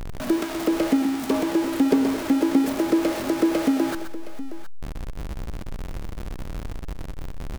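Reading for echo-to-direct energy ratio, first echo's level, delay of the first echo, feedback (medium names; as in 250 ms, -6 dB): -7.5 dB, -8.5 dB, 126 ms, no regular repeats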